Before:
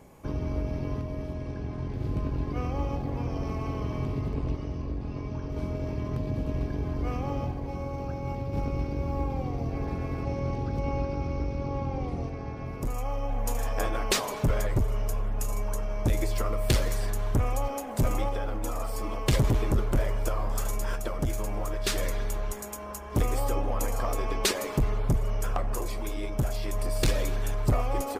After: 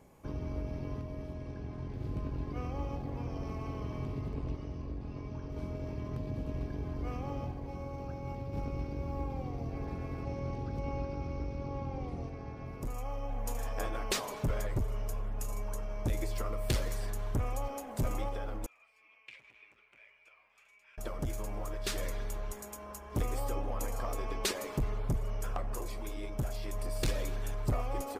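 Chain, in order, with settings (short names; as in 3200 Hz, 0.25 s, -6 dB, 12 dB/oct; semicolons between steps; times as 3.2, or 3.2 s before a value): 18.66–20.98 band-pass 2400 Hz, Q 9.7; gain -7 dB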